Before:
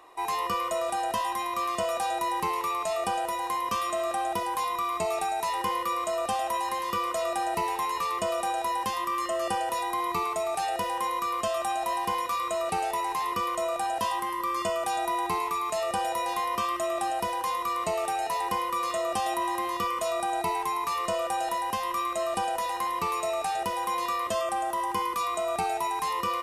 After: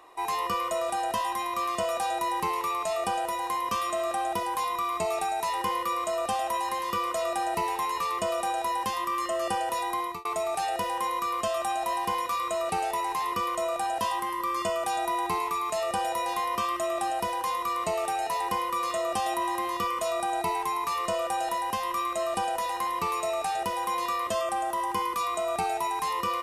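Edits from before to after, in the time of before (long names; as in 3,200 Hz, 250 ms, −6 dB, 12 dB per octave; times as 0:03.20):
0:09.89–0:10.25: fade out equal-power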